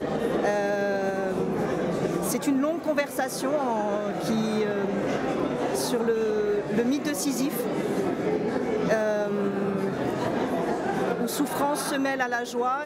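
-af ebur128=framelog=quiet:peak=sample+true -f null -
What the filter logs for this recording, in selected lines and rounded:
Integrated loudness:
  I:         -26.4 LUFS
  Threshold: -36.4 LUFS
Loudness range:
  LRA:         0.6 LU
  Threshold: -46.4 LUFS
  LRA low:   -26.8 LUFS
  LRA high:  -26.1 LUFS
Sample peak:
  Peak:      -12.1 dBFS
True peak:
  Peak:      -12.0 dBFS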